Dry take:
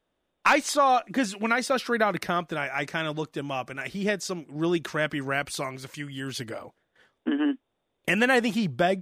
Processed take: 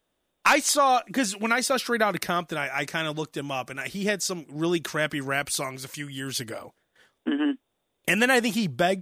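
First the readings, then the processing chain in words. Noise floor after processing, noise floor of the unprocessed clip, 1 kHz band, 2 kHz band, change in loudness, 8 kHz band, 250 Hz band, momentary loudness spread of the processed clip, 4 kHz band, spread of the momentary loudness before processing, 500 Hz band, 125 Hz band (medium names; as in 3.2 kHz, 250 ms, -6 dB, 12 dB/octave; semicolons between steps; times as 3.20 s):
-77 dBFS, -78 dBFS, +0.5 dB, +1.5 dB, +1.0 dB, +7.5 dB, 0.0 dB, 13 LU, +4.0 dB, 13 LU, 0.0 dB, 0.0 dB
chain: treble shelf 5.1 kHz +11 dB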